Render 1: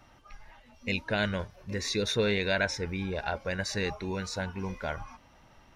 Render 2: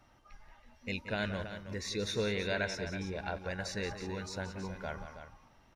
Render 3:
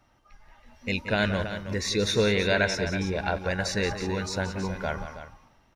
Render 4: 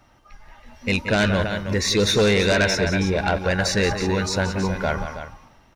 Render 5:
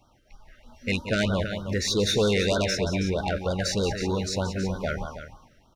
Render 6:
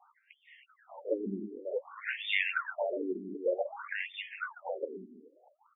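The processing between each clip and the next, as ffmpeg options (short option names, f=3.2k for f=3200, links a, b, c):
-filter_complex "[0:a]equalizer=f=2.9k:w=1.5:g=-2,asplit=2[a][b];[b]aecho=0:1:178|323:0.282|0.299[c];[a][c]amix=inputs=2:normalize=0,volume=-6dB"
-af "dynaudnorm=f=200:g=7:m=10dB"
-af "aeval=exprs='0.316*sin(PI/2*2.24*val(0)/0.316)':c=same,volume=-3dB"
-af "afftfilt=real='re*(1-between(b*sr/1024,870*pow(2200/870,0.5+0.5*sin(2*PI*3.2*pts/sr))/1.41,870*pow(2200/870,0.5+0.5*sin(2*PI*3.2*pts/sr))*1.41))':imag='im*(1-between(b*sr/1024,870*pow(2200/870,0.5+0.5*sin(2*PI*3.2*pts/sr))/1.41,870*pow(2200/870,0.5+0.5*sin(2*PI*3.2*pts/sr))*1.41))':win_size=1024:overlap=0.75,volume=-4.5dB"
-filter_complex "[0:a]asplit=2[a][b];[b]highpass=f=720:p=1,volume=9dB,asoftclip=type=tanh:threshold=-15dB[c];[a][c]amix=inputs=2:normalize=0,lowpass=f=5.5k:p=1,volume=-6dB,afftfilt=real='re*between(b*sr/1024,280*pow(2600/280,0.5+0.5*sin(2*PI*0.54*pts/sr))/1.41,280*pow(2600/280,0.5+0.5*sin(2*PI*0.54*pts/sr))*1.41)':imag='im*between(b*sr/1024,280*pow(2600/280,0.5+0.5*sin(2*PI*0.54*pts/sr))/1.41,280*pow(2600/280,0.5+0.5*sin(2*PI*0.54*pts/sr))*1.41)':win_size=1024:overlap=0.75"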